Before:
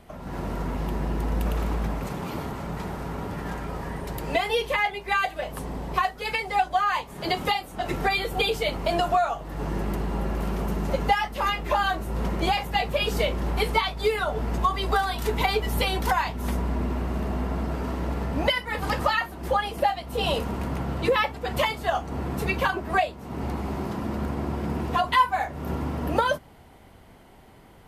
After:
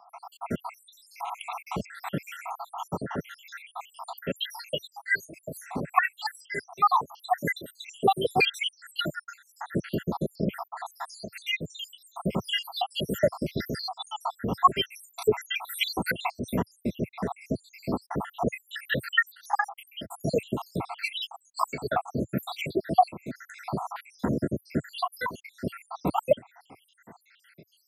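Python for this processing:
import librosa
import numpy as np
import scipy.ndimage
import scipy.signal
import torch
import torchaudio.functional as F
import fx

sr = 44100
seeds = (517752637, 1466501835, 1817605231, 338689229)

y = fx.spec_dropout(x, sr, seeds[0], share_pct=84)
y = scipy.signal.sosfilt(scipy.signal.butter(4, 110.0, 'highpass', fs=sr, output='sos'), y)
y = y * 10.0 ** (6.0 / 20.0)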